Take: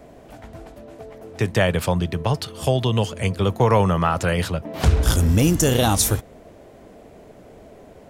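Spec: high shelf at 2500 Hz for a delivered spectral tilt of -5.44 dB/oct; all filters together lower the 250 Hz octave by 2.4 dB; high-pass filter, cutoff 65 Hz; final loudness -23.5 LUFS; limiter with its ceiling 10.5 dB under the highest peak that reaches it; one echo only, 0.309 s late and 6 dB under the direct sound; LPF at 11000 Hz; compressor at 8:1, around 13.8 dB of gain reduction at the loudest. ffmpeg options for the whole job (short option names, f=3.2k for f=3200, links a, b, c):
-af "highpass=65,lowpass=11k,equalizer=f=250:t=o:g=-3.5,highshelf=f=2.5k:g=-6,acompressor=threshold=-28dB:ratio=8,alimiter=level_in=2.5dB:limit=-24dB:level=0:latency=1,volume=-2.5dB,aecho=1:1:309:0.501,volume=13dB"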